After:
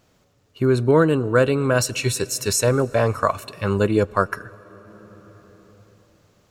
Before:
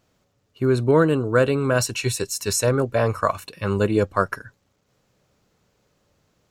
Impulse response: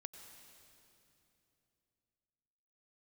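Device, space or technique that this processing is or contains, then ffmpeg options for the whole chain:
ducked reverb: -filter_complex "[0:a]asplit=3[a][b][c];[1:a]atrim=start_sample=2205[d];[b][d]afir=irnorm=-1:irlink=0[e];[c]apad=whole_len=286656[f];[e][f]sidechaincompress=threshold=-30dB:ratio=8:attack=16:release=1110,volume=5dB[g];[a][g]amix=inputs=2:normalize=0"

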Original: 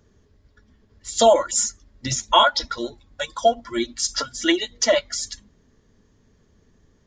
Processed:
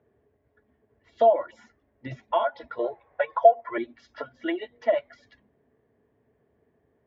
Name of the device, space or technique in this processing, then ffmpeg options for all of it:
bass amplifier: -filter_complex "[0:a]asettb=1/sr,asplit=3[a][b][c];[a]atrim=end=2.794[d];[b]atrim=start=2.79:end=3.78,asetpts=PTS-STARTPTS,afade=t=in:d=0.004:c=qsin,afade=t=out:st=0.986:d=0.004:c=qsin,equalizer=f=250:t=o:w=1:g=-11,equalizer=f=500:t=o:w=1:g=11,equalizer=f=1k:t=o:w=1:g=11,equalizer=f=2k:t=o:w=1:g=10[e];[c]atrim=start=3.776[f];[d][e]acrossfade=d=0.004:c1=hsin:c2=qsin[g];[g][f]acrossfade=d=0.004:c1=qsin:c2=hsin,acompressor=threshold=-17dB:ratio=4,highpass=f=81:w=0.5412,highpass=f=81:w=1.3066,equalizer=f=92:t=q:w=4:g=-9,equalizer=f=190:t=q:w=4:g=-9,equalizer=f=430:t=q:w=4:g=5,equalizer=f=690:t=q:w=4:g=10,equalizer=f=1.3k:t=q:w=4:g=-5,lowpass=f=2.3k:w=0.5412,lowpass=f=2.3k:w=1.3066,volume=-6.5dB"

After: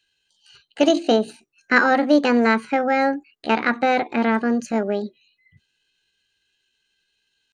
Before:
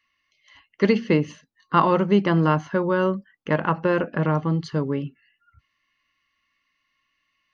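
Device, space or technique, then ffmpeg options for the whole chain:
chipmunk voice: -af "asetrate=64194,aresample=44100,atempo=0.686977,volume=2dB"

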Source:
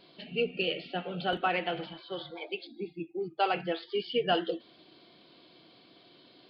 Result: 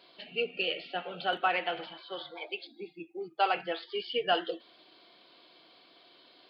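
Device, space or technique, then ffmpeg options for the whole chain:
filter by subtraction: -filter_complex "[0:a]asplit=2[a][b];[b]lowpass=940,volume=-1[c];[a][c]amix=inputs=2:normalize=0"

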